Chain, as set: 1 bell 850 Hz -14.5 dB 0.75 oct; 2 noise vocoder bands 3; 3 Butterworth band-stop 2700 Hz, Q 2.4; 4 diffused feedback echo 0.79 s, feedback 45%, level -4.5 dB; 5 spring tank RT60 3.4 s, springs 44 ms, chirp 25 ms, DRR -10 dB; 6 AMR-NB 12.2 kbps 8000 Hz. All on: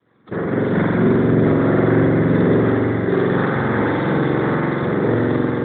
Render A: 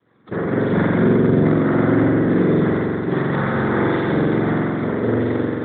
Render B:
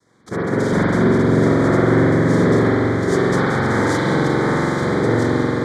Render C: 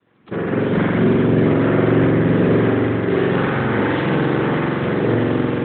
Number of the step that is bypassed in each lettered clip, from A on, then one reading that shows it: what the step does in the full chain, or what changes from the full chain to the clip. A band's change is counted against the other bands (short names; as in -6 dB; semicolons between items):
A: 4, momentary loudness spread change +1 LU; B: 6, 4 kHz band +5.5 dB; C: 3, 4 kHz band +5.0 dB